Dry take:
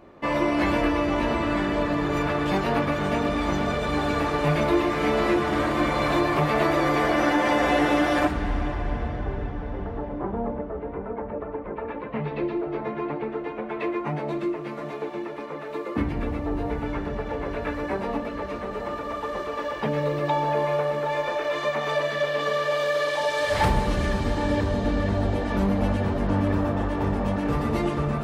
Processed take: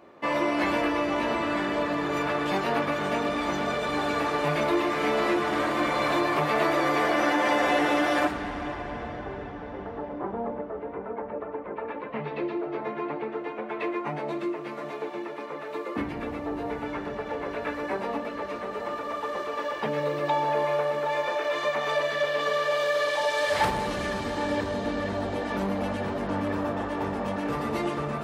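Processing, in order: high-pass 340 Hz 6 dB/octave; transformer saturation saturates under 510 Hz

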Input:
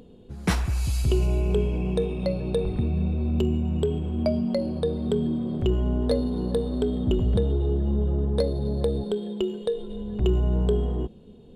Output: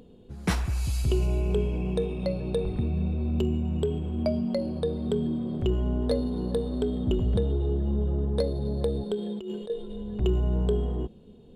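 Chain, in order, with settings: 9.16–9.70 s: compressor with a negative ratio -31 dBFS, ratio -1; trim -2.5 dB

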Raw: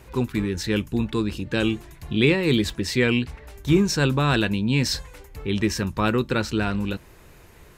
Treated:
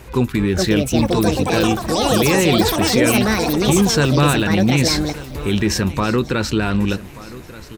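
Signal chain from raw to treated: peak limiter -16 dBFS, peak gain reduction 11 dB; ever faster or slower copies 477 ms, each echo +7 st, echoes 3; on a send: feedback delay 1182 ms, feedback 36%, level -18 dB; on the sum: trim +8 dB

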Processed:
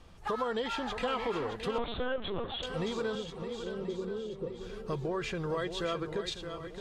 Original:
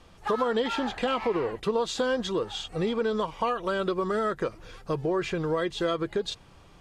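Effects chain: bass shelf 150 Hz +5.5 dB; in parallel at -2.5 dB: level held to a coarse grid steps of 19 dB; on the sum: dynamic bell 270 Hz, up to -5 dB, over -36 dBFS, Q 0.91; 3.15–4.60 s: rippled Chebyshev low-pass 540 Hz, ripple 3 dB; on a send: shuffle delay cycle 1032 ms, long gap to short 1.5:1, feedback 38%, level -8.5 dB; 1.78–2.63 s: on the sum: LPC vocoder at 8 kHz pitch kept; trim -6.5 dB

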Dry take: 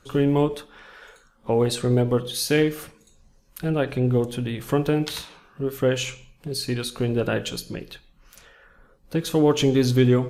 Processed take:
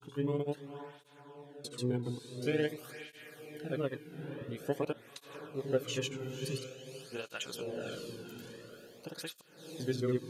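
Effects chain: peaking EQ 140 Hz +7 dB 0.25 oct; gain riding within 5 dB 2 s; trance gate "xxxxx..xx.x" 61 bpm -60 dB; granulator 100 ms, pitch spread up and down by 0 st; on a send: echo that smears into a reverb 521 ms, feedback 45%, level -7 dB; on the sum: cancelling through-zero flanger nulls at 0.48 Hz, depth 1.8 ms; trim -8.5 dB

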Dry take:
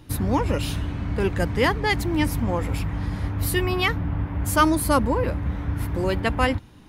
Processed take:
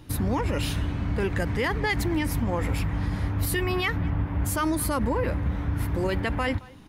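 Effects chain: speakerphone echo 220 ms, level -26 dB; peak limiter -17.5 dBFS, peak gain reduction 12 dB; dynamic bell 1.9 kHz, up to +4 dB, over -44 dBFS, Q 2.3

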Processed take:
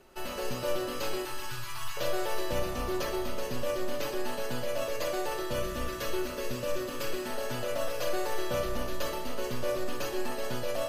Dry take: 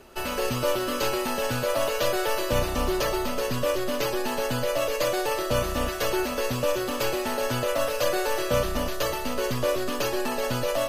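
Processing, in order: 1.25–1.97 s: elliptic band-stop 130–950 Hz; 5.44–7.30 s: peaking EQ 780 Hz -10 dB 0.31 oct; simulated room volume 890 m³, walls mixed, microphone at 0.94 m; trim -8.5 dB

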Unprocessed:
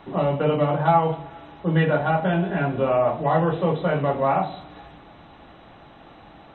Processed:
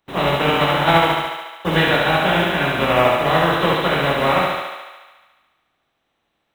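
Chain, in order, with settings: spectral contrast reduction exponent 0.47; gate -35 dBFS, range -29 dB; thinning echo 72 ms, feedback 72%, high-pass 300 Hz, level -3 dB; trim +2 dB

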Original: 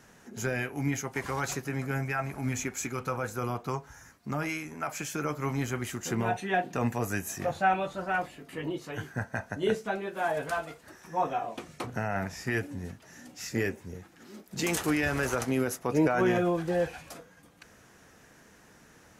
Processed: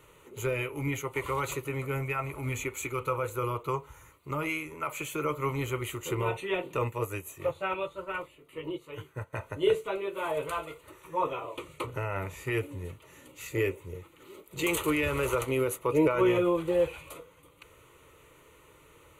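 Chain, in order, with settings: static phaser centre 1.1 kHz, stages 8; 6.84–9.33 s: upward expansion 1.5:1, over -47 dBFS; trim +4 dB

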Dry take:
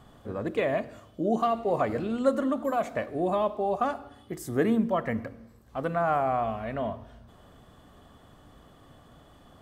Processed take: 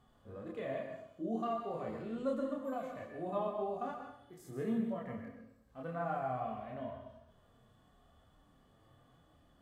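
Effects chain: chorus voices 4, 0.41 Hz, delay 27 ms, depth 4.6 ms; harmonic-percussive split percussive -12 dB; plate-style reverb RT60 0.58 s, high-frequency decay 0.9×, pre-delay 110 ms, DRR 5 dB; trim -7.5 dB

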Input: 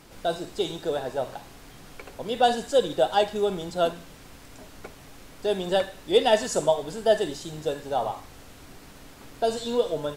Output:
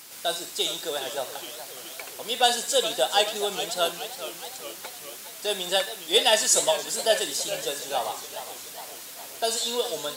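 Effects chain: high-pass 63 Hz; tilt EQ +4.5 dB/octave; modulated delay 418 ms, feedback 62%, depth 166 cents, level -12 dB

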